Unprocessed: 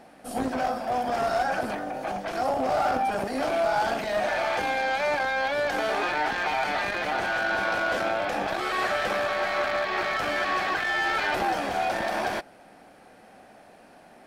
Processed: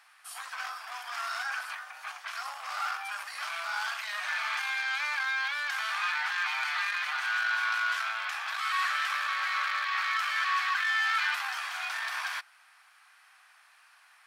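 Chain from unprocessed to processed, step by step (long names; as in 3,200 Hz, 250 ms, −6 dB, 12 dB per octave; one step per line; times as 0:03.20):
Chebyshev high-pass filter 1,100 Hz, order 4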